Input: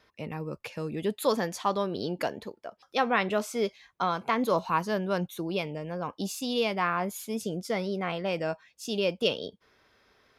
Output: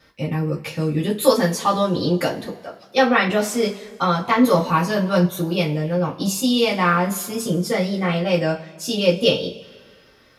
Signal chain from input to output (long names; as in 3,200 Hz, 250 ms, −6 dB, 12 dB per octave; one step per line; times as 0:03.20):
bass and treble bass +6 dB, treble +4 dB
coupled-rooms reverb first 0.22 s, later 1.7 s, from −22 dB, DRR −5.5 dB
level +2 dB